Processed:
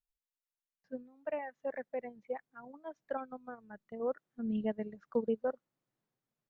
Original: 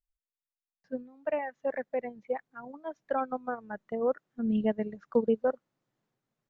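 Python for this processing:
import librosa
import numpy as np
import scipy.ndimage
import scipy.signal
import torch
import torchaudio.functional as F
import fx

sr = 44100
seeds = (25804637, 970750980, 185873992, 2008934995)

y = fx.peak_eq(x, sr, hz=770.0, db=-6.5, octaves=2.9, at=(3.17, 4.0))
y = y * 10.0 ** (-6.5 / 20.0)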